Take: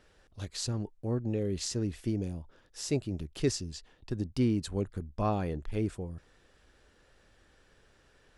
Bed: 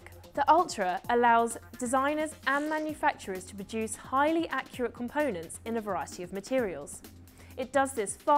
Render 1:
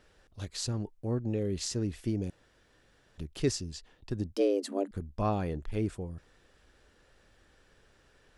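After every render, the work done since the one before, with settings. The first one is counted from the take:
0:02.30–0:03.18: fill with room tone
0:04.36–0:04.91: frequency shifter +190 Hz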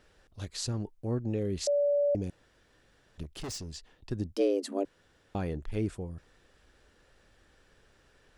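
0:01.67–0:02.15: beep over 576 Hz −23 dBFS
0:03.23–0:03.77: gain into a clipping stage and back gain 36 dB
0:04.85–0:05.35: fill with room tone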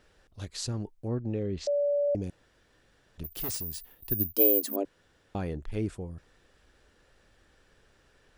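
0:01.08–0:02.08: high-frequency loss of the air 120 metres
0:03.24–0:04.76: bad sample-rate conversion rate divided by 3×, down none, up zero stuff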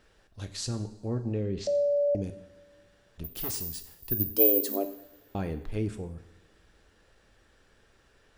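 coupled-rooms reverb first 0.68 s, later 2 s, from −17 dB, DRR 7.5 dB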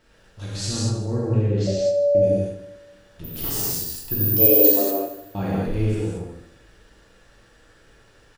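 on a send: repeating echo 78 ms, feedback 52%, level −13 dB
on the sum: reverb whose tail is shaped and stops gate 260 ms flat, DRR −8 dB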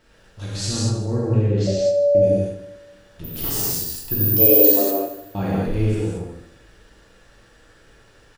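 level +2 dB
brickwall limiter −2 dBFS, peak gain reduction 2 dB

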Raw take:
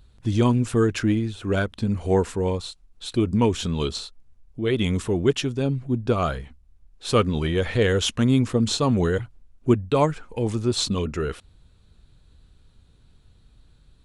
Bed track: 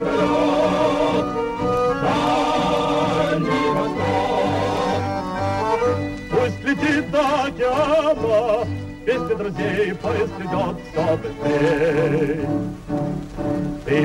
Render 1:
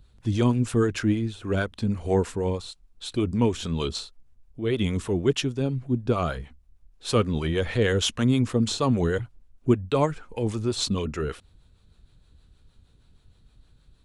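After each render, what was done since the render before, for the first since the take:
two-band tremolo in antiphase 6.4 Hz, depth 50%, crossover 420 Hz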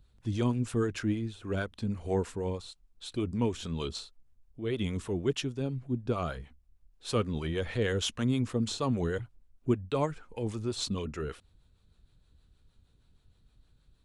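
level −7 dB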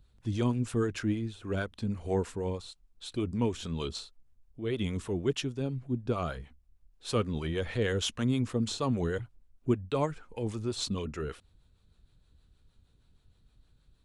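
no processing that can be heard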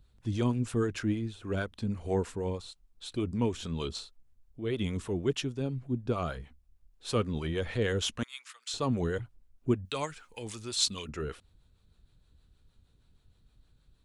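0:08.23–0:08.74: high-pass filter 1,400 Hz 24 dB per octave
0:09.85–0:11.09: tilt shelving filter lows −9 dB, about 1,300 Hz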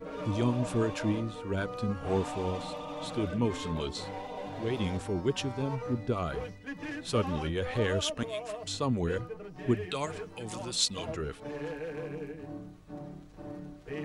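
mix in bed track −20 dB

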